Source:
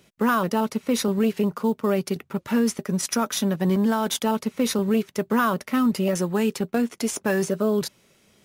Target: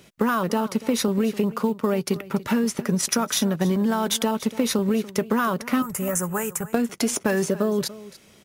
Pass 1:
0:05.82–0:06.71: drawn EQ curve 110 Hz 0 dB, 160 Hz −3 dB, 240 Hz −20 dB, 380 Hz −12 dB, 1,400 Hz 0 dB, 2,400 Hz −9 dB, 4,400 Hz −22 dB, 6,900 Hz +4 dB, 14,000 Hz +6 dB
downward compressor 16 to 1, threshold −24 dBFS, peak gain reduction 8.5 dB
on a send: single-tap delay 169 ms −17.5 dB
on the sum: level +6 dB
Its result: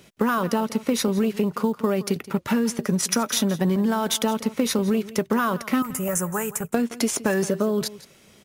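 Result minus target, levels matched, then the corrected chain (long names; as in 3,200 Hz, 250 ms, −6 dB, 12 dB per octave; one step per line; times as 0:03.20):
echo 119 ms early
0:05.82–0:06.71: drawn EQ curve 110 Hz 0 dB, 160 Hz −3 dB, 240 Hz −20 dB, 380 Hz −12 dB, 1,400 Hz 0 dB, 2,400 Hz −9 dB, 4,400 Hz −22 dB, 6,900 Hz +4 dB, 14,000 Hz +6 dB
downward compressor 16 to 1, threshold −24 dBFS, peak gain reduction 8.5 dB
on a send: single-tap delay 288 ms −17.5 dB
on the sum: level +6 dB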